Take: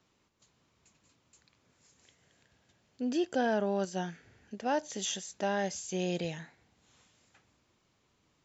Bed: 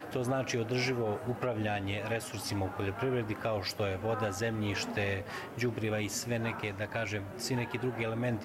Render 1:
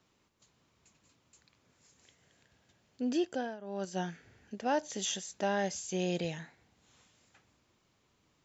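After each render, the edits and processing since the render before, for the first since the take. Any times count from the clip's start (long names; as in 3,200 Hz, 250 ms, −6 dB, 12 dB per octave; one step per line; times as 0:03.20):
0:03.18–0:04.00: duck −18.5 dB, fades 0.39 s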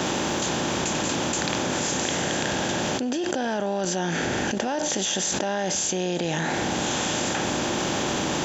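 compressor on every frequency bin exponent 0.6
envelope flattener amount 100%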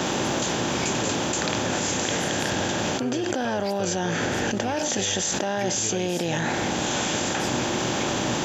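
mix in bed −2 dB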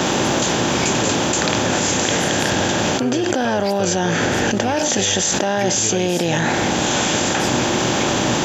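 level +7 dB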